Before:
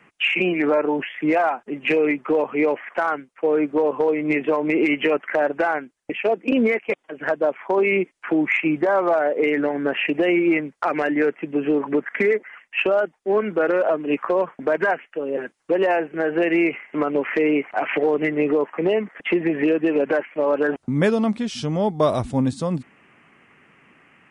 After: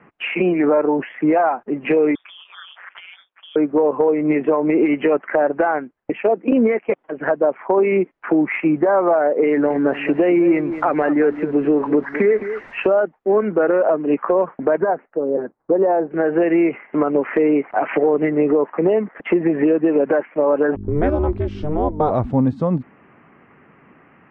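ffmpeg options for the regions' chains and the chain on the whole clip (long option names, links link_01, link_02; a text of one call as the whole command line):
ffmpeg -i in.wav -filter_complex "[0:a]asettb=1/sr,asplit=3[link_01][link_02][link_03];[link_01]atrim=end=2.154[link_04];[link_02]atrim=start=2.15:end=3.56,asetpts=PTS-STARTPTS,afade=type=in:duration=0.004:curve=qsin,afade=type=out:start_time=1.406:duration=0.004:curve=qsin,lowpass=frequency=3100:width_type=q:width=0.5098,lowpass=frequency=3100:width_type=q:width=0.6013,lowpass=frequency=3100:width_type=q:width=0.9,lowpass=frequency=3100:width_type=q:width=2.563,afreqshift=-3700,acompressor=threshold=-30dB:ratio=4:attack=3.2:release=140:knee=1:detection=peak,aeval=exprs='val(0)*sin(2*PI*92*n/s)':channel_layout=same[link_05];[link_03]atrim=start=3.556[link_06];[link_04][link_05]acrossfade=duration=0.004:curve1=hsin:curve2=qsin[link_07];[link_07][link_06]acrossfade=duration=0.004:curve1=qsin:curve2=hsin,asettb=1/sr,asplit=3[link_08][link_09][link_10];[link_08]atrim=end=9.494[link_11];[link_09]atrim=start=9.49:end=12.88,asetpts=PTS-STARTPTS,afade=type=in:duration=0.004:curve=qsin,afade=type=out:start_time=3.386:duration=0.004:curve=qsin,aeval=exprs='val(0)+0.5*0.0141*sgn(val(0))':channel_layout=same,aecho=1:1:212:0.211,atrim=end_sample=149499[link_12];[link_10]atrim=start=12.876[link_13];[link_11][link_12]acrossfade=duration=0.004:curve1=hsin:curve2=qsin[link_14];[link_14][link_13]acrossfade=duration=0.004:curve1=qsin:curve2=hsin,asettb=1/sr,asplit=3[link_15][link_16][link_17];[link_15]atrim=end=14.804[link_18];[link_16]atrim=start=14.8:end=16.11,asetpts=PTS-STARTPTS,afade=type=in:duration=0.004:curve=qsin,afade=type=out:start_time=1.306:duration=0.004:curve=qsin,lowpass=1000,acrusher=bits=9:mode=log:mix=0:aa=0.000001[link_19];[link_17]atrim=start=16.106[link_20];[link_18][link_19]acrossfade=duration=0.004:curve1=hsin:curve2=qsin[link_21];[link_21][link_20]acrossfade=duration=0.004:curve1=qsin:curve2=hsin,asettb=1/sr,asplit=3[link_22][link_23][link_24];[link_22]atrim=end=20.754[link_25];[link_23]atrim=start=20.75:end=22.11,asetpts=PTS-STARTPTS,afade=type=in:duration=0.004:curve=qsin,afade=type=out:start_time=1.356:duration=0.004:curve=qsin,aeval=exprs='val(0)+0.02*(sin(2*PI*50*n/s)+sin(2*PI*2*50*n/s)/2+sin(2*PI*3*50*n/s)/3+sin(2*PI*4*50*n/s)/4+sin(2*PI*5*50*n/s)/5)':channel_layout=same,aeval=exprs='val(0)*sin(2*PI*150*n/s)':channel_layout=same[link_26];[link_24]atrim=start=22.106[link_27];[link_25][link_26]acrossfade=duration=0.004:curve1=hsin:curve2=qsin[link_28];[link_28][link_27]acrossfade=duration=0.004:curve1=qsin:curve2=hsin,lowpass=1300,acompressor=threshold=-25dB:ratio=1.5,volume=7dB" out.wav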